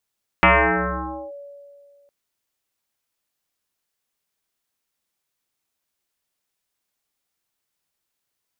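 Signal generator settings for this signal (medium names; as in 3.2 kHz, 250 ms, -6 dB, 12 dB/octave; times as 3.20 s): FM tone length 1.66 s, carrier 568 Hz, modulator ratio 0.44, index 7.9, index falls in 0.89 s linear, decay 2.19 s, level -9 dB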